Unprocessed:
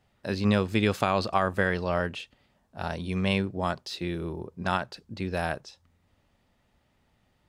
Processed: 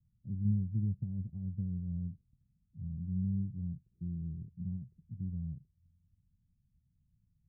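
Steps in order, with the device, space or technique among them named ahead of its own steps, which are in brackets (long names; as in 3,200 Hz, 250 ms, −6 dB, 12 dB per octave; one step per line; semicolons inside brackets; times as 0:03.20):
the neighbour's flat through the wall (low-pass filter 160 Hz 24 dB per octave; parametric band 160 Hz +4 dB)
level −2.5 dB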